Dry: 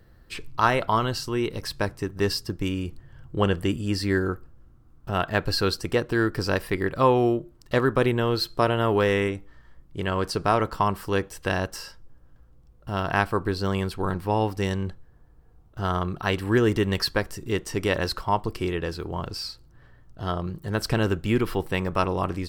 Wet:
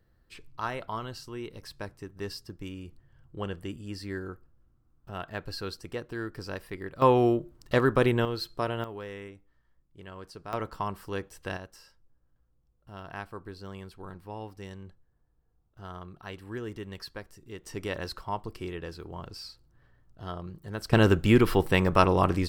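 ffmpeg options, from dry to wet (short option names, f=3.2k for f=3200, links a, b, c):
-af "asetnsamples=n=441:p=0,asendcmd='7.02 volume volume -1.5dB;8.25 volume volume -8.5dB;8.84 volume volume -18.5dB;10.53 volume volume -9.5dB;11.57 volume volume -16.5dB;17.64 volume volume -9.5dB;20.93 volume volume 3dB',volume=-12.5dB"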